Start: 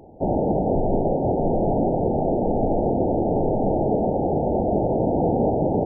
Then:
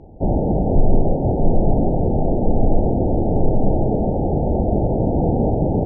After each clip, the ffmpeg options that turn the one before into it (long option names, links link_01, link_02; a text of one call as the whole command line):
ffmpeg -i in.wav -af "aemphasis=mode=reproduction:type=bsi,volume=-2dB" out.wav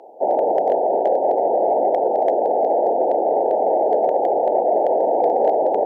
ffmpeg -i in.wav -af "highpass=frequency=510:width=0.5412,highpass=frequency=510:width=1.3066,acontrast=74,asoftclip=type=hard:threshold=-11dB,volume=2.5dB" out.wav